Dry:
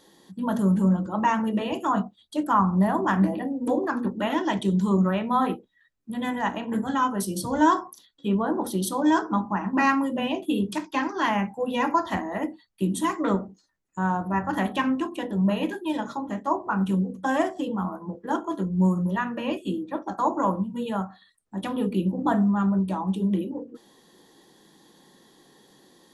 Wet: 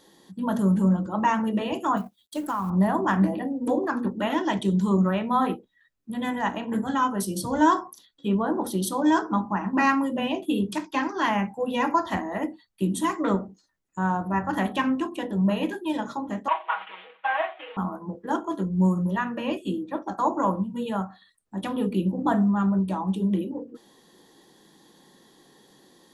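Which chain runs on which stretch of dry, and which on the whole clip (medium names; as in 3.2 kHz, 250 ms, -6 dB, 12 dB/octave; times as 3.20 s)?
1.97–2.70 s: companding laws mixed up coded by A + treble shelf 6.2 kHz +9.5 dB + compression 5:1, threshold -24 dBFS
16.48–17.77 s: CVSD coder 16 kbps + high-pass 700 Hz 24 dB/octave + comb 6.3 ms, depth 80%
whole clip: none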